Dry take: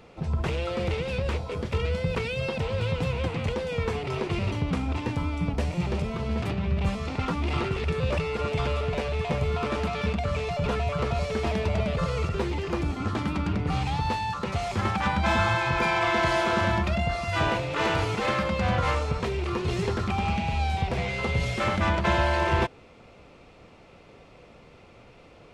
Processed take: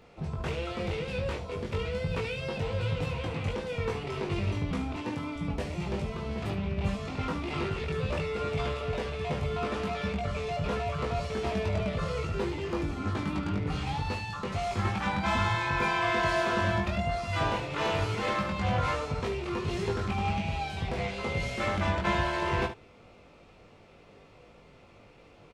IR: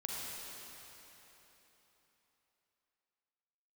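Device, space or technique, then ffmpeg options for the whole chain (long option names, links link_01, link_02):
slapback doubling: -filter_complex "[0:a]asplit=3[link_01][link_02][link_03];[link_02]adelay=20,volume=-3.5dB[link_04];[link_03]adelay=73,volume=-10dB[link_05];[link_01][link_04][link_05]amix=inputs=3:normalize=0,asettb=1/sr,asplit=3[link_06][link_07][link_08];[link_06]atrim=end=4.964[link_09];[link_07]atrim=start=4.96:end=5.36,asetpts=PTS-STARTPTS,afade=type=in:duration=0.004:curve=qsin,afade=type=out:start_time=0.396:duration=0.004:curve=qsin,highpass=140[link_10];[link_08]atrim=start=5.356[link_11];[link_09][link_10]acrossfade=duration=0.004:curve1=hsin:curve2=qsin[link_12];[link_12][link_11]acrossfade=duration=0.004:curve1=qsin:curve2=hsin,volume=-5.5dB"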